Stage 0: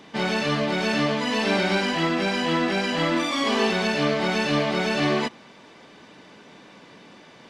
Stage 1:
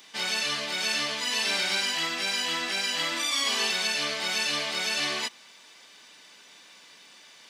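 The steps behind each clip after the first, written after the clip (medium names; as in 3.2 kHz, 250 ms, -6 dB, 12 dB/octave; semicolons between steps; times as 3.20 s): high-pass 64 Hz; pre-emphasis filter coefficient 0.97; trim +8.5 dB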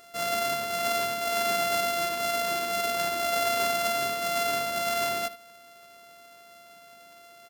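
sorted samples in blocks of 64 samples; delay 77 ms -15.5 dB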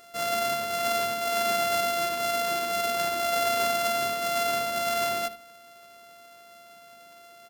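on a send at -13 dB: distance through air 460 m + reverberation RT60 0.60 s, pre-delay 4 ms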